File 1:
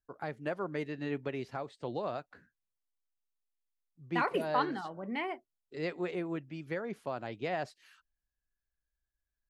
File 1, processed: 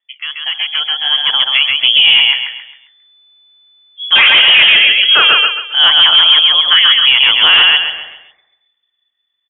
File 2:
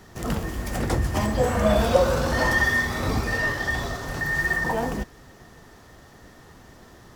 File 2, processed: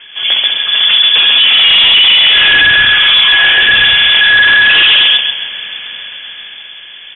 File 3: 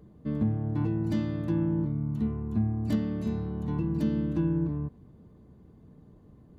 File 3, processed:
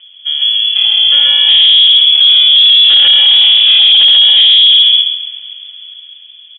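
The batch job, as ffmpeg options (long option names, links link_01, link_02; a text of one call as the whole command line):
ffmpeg -i in.wav -filter_complex "[0:a]dynaudnorm=framelen=140:gausssize=21:maxgain=15.5dB,asplit=2[link_01][link_02];[link_02]aecho=0:1:134|268|402|536|670:0.708|0.255|0.0917|0.033|0.0119[link_03];[link_01][link_03]amix=inputs=2:normalize=0,lowpass=frequency=3000:width_type=q:width=0.5098,lowpass=frequency=3000:width_type=q:width=0.6013,lowpass=frequency=3000:width_type=q:width=0.9,lowpass=frequency=3000:width_type=q:width=2.563,afreqshift=-3500,bandreject=frequency=58.6:width_type=h:width=4,bandreject=frequency=117.2:width_type=h:width=4,bandreject=frequency=175.8:width_type=h:width=4,bandreject=frequency=234.4:width_type=h:width=4,bandreject=frequency=293:width_type=h:width=4,bandreject=frequency=351.6:width_type=h:width=4,bandreject=frequency=410.2:width_type=h:width=4,bandreject=frequency=468.8:width_type=h:width=4,bandreject=frequency=527.4:width_type=h:width=4,bandreject=frequency=586:width_type=h:width=4,bandreject=frequency=644.6:width_type=h:width=4,bandreject=frequency=703.2:width_type=h:width=4,bandreject=frequency=761.8:width_type=h:width=4,bandreject=frequency=820.4:width_type=h:width=4,bandreject=frequency=879:width_type=h:width=4,bandreject=frequency=937.6:width_type=h:width=4,apsyclip=16.5dB,volume=-2dB" out.wav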